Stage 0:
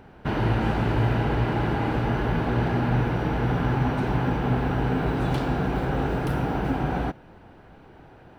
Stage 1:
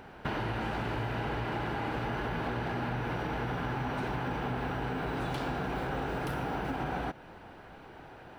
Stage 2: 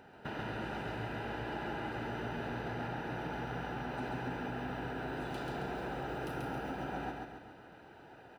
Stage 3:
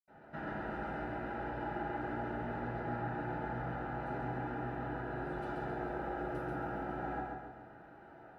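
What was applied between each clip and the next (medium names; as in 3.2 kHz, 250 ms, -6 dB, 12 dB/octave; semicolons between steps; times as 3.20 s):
bass shelf 440 Hz -8.5 dB; in parallel at +0.5 dB: peak limiter -25 dBFS, peak gain reduction 7.5 dB; on the sum: compression, threshold -28 dBFS, peak gain reduction 7.5 dB; trim -2.5 dB
comb of notches 1.1 kHz; feedback delay 136 ms, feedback 48%, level -3 dB; trim -6.5 dB
reverberation RT60 0.50 s, pre-delay 76 ms; trim +15 dB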